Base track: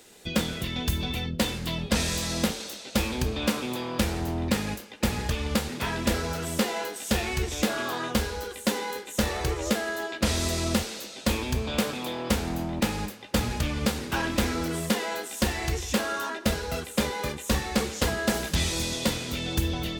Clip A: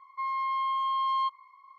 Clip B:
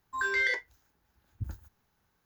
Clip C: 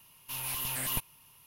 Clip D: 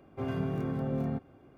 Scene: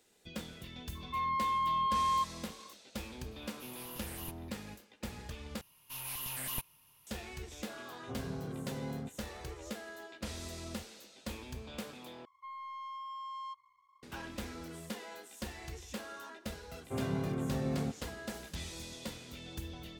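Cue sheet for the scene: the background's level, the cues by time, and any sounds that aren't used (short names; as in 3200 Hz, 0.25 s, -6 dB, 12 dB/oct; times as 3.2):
base track -16.5 dB
0.95 add A -2.5 dB
3.31 add C -13 dB
5.61 replace with C -5.5 dB
7.9 add D -8.5 dB + LPF 2100 Hz
12.25 replace with A -16.5 dB + sample leveller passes 1
16.73 add D -2.5 dB
not used: B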